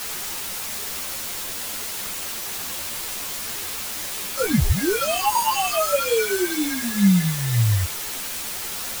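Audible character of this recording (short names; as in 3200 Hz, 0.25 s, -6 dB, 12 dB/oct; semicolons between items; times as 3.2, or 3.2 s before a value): aliases and images of a low sample rate 1900 Hz, jitter 0%; phasing stages 6, 2 Hz, lowest notch 170–1600 Hz; a quantiser's noise floor 6-bit, dither triangular; a shimmering, thickened sound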